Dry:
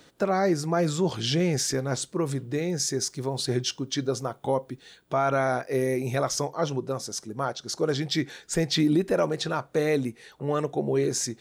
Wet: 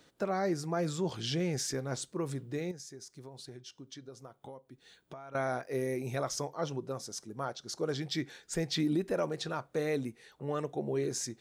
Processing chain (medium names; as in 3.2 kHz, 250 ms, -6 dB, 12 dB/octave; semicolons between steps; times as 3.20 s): 2.71–5.35 s: compression 6:1, threshold -38 dBFS, peak gain reduction 16.5 dB; trim -8 dB